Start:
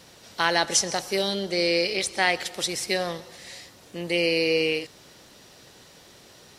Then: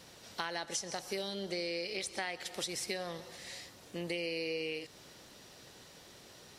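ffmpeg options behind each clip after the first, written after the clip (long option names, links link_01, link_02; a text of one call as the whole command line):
ffmpeg -i in.wav -af "acompressor=threshold=-30dB:ratio=6,volume=-4.5dB" out.wav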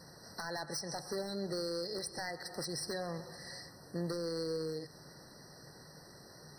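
ffmpeg -i in.wav -af "aeval=exprs='0.0282*(abs(mod(val(0)/0.0282+3,4)-2)-1)':channel_layout=same,equalizer=frequency=150:width=3.7:gain=9.5,afftfilt=real='re*eq(mod(floor(b*sr/1024/2000),2),0)':imag='im*eq(mod(floor(b*sr/1024/2000),2),0)':win_size=1024:overlap=0.75,volume=1dB" out.wav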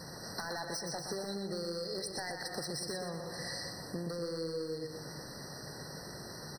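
ffmpeg -i in.wav -af "acompressor=threshold=-45dB:ratio=6,aecho=1:1:122|244|366|488|610|732:0.501|0.241|0.115|0.0554|0.0266|0.0128,volume=8dB" out.wav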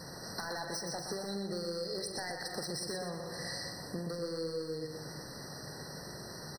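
ffmpeg -i in.wav -filter_complex "[0:a]asplit=2[link_01][link_02];[link_02]adelay=45,volume=-11.5dB[link_03];[link_01][link_03]amix=inputs=2:normalize=0" out.wav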